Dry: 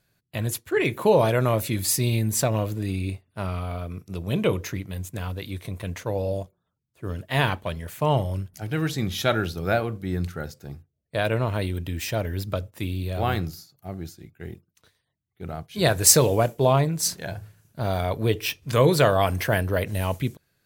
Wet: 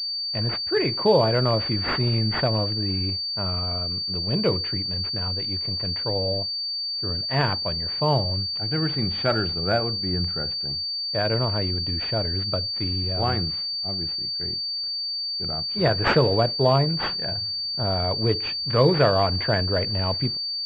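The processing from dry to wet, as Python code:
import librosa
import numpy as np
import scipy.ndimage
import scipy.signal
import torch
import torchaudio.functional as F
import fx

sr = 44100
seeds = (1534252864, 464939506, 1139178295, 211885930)

y = fx.pwm(x, sr, carrier_hz=4600.0)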